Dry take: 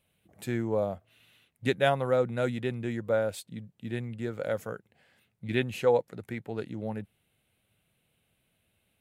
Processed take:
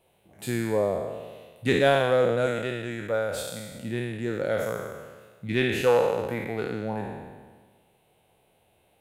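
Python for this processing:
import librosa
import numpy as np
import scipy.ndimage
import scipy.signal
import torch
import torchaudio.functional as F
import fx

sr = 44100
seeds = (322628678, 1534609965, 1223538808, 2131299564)

p1 = fx.spec_trails(x, sr, decay_s=1.44)
p2 = fx.peak_eq(p1, sr, hz=250.0, db=-6.0, octaves=2.7, at=(2.46, 3.75))
p3 = np.clip(p2, -10.0 ** (-22.0 / 20.0), 10.0 ** (-22.0 / 20.0))
p4 = p2 + (p3 * 10.0 ** (-11.5 / 20.0))
y = fx.dmg_noise_band(p4, sr, seeds[0], low_hz=340.0, high_hz=880.0, level_db=-68.0)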